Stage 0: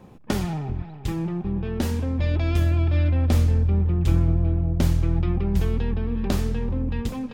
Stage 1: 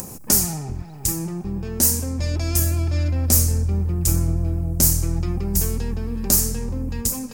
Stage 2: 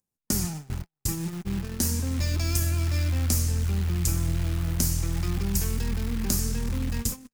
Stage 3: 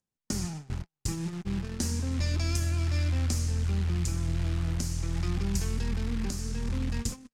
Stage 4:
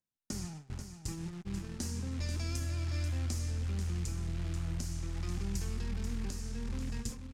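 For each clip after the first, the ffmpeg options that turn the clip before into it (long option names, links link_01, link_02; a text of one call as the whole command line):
ffmpeg -i in.wav -af "acompressor=mode=upward:threshold=-28dB:ratio=2.5,aexciter=amount=9.8:drive=9.2:freq=5300,volume=-1dB" out.wav
ffmpeg -i in.wav -filter_complex "[0:a]acrusher=bits=7:dc=4:mix=0:aa=0.000001,acrossover=split=340|940|5200[link_01][link_02][link_03][link_04];[link_01]acompressor=threshold=-23dB:ratio=4[link_05];[link_02]acompressor=threshold=-49dB:ratio=4[link_06];[link_03]acompressor=threshold=-34dB:ratio=4[link_07];[link_04]acompressor=threshold=-31dB:ratio=4[link_08];[link_05][link_06][link_07][link_08]amix=inputs=4:normalize=0,agate=range=-52dB:threshold=-28dB:ratio=16:detection=peak" out.wav
ffmpeg -i in.wav -af "alimiter=limit=-13dB:level=0:latency=1:release=412,lowpass=7100,volume=-2dB" out.wav
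ffmpeg -i in.wav -af "aecho=1:1:487:0.376,volume=-7.5dB" out.wav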